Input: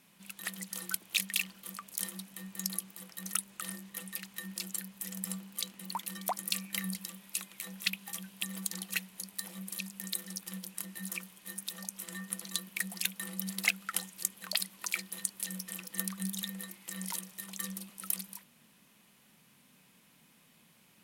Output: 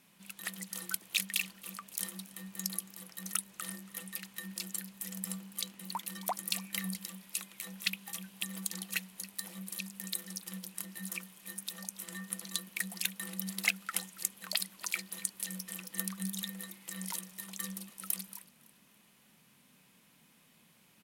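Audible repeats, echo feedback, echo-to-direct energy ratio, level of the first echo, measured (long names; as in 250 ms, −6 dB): 2, 34%, −20.5 dB, −21.0 dB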